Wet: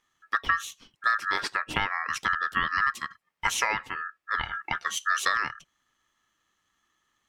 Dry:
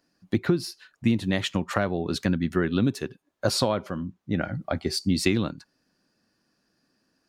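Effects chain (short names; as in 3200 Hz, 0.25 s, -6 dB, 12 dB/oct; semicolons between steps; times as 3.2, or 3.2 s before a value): ring modulator 1500 Hz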